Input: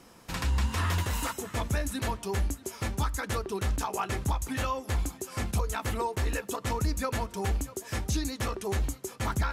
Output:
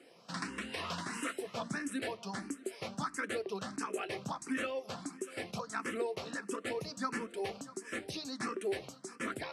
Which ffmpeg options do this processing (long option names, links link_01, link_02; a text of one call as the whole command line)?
ffmpeg -i in.wav -filter_complex "[0:a]highpass=frequency=180:width=0.5412,highpass=frequency=180:width=1.3066,equalizer=frequency=890:width_type=q:width=4:gain=-8,equalizer=frequency=3500:width_type=q:width=4:gain=-4,equalizer=frequency=6800:width_type=q:width=4:gain=-10,lowpass=frequency=8900:width=0.5412,lowpass=frequency=8900:width=1.3066,asplit=2[link_01][link_02];[link_02]afreqshift=1.5[link_03];[link_01][link_03]amix=inputs=2:normalize=1" out.wav